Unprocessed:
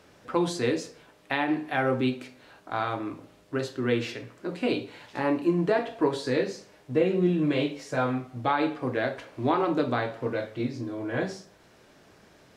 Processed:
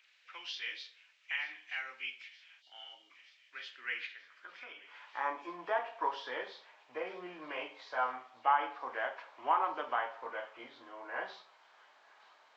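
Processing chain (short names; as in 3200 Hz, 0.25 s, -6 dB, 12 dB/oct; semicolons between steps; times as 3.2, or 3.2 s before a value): nonlinear frequency compression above 2000 Hz 1.5:1; high-pass sweep 2400 Hz -> 920 Hz, 3.39–5.45; 4.06–5.04 compressor 10:1, threshold -39 dBFS, peak gain reduction 9.5 dB; on a send: thin delay 0.925 s, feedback 72%, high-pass 2800 Hz, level -17 dB; 2.62–3.11 on the sum: spectral gain 950–2800 Hz -21 dB; gain -7.5 dB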